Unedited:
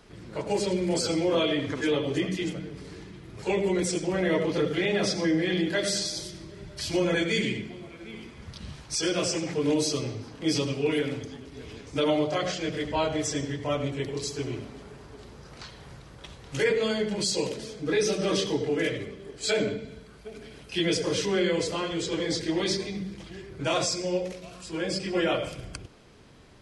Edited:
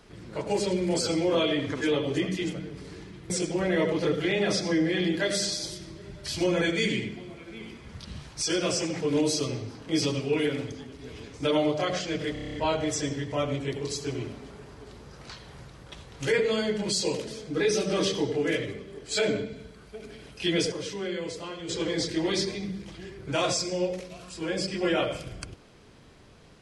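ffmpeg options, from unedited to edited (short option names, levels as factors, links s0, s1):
-filter_complex "[0:a]asplit=11[s0][s1][s2][s3][s4][s5][s6][s7][s8][s9][s10];[s0]atrim=end=3.302[s11];[s1]atrim=start=3.828:end=12.892[s12];[s2]atrim=start=12.858:end=12.892[s13];[s3]atrim=start=12.858:end=12.892[s14];[s4]atrim=start=12.858:end=12.892[s15];[s5]atrim=start=12.858:end=12.892[s16];[s6]atrim=start=12.858:end=12.892[s17];[s7]atrim=start=12.858:end=12.892[s18];[s8]atrim=start=12.858:end=21.042[s19];[s9]atrim=start=21.038:end=22.012,asetpts=PTS-STARTPTS,volume=0.422[s20];[s10]atrim=start=22.008[s21];[s11][s12]acrossfade=d=0.004:c1=hsin:c2=hsin[s22];[s22][s13]acrossfade=d=0.004:c1=hsin:c2=hsin[s23];[s23][s14]acrossfade=d=0.004:c1=hsin:c2=hsin[s24];[s24][s15]acrossfade=d=0.004:c1=hsin:c2=hsin[s25];[s25][s16]acrossfade=d=0.004:c1=hsin:c2=hsin[s26];[s26][s17]acrossfade=d=0.004:c1=hsin:c2=hsin[s27];[s27][s18]acrossfade=d=0.004:c1=hsin:c2=hsin[s28];[s28][s19]acrossfade=d=0.004:c1=hsin:c2=hsin[s29];[s29][s20]acrossfade=d=0.004:c1=hsin:c2=hsin[s30];[s30][s21]acrossfade=d=0.004:c1=hsin:c2=hsin"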